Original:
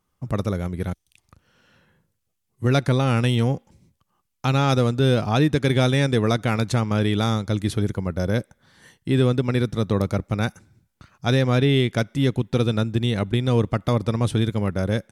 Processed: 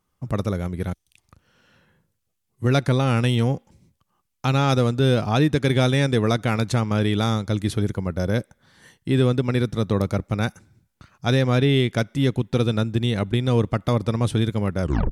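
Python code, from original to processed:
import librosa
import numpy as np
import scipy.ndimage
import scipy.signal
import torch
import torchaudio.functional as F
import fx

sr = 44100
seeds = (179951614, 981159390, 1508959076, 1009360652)

y = fx.tape_stop_end(x, sr, length_s=0.3)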